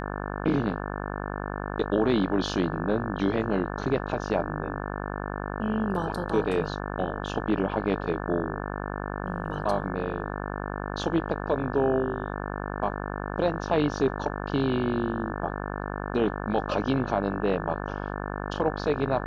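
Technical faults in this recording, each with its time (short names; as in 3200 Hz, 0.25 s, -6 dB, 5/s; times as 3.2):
buzz 50 Hz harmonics 35 -33 dBFS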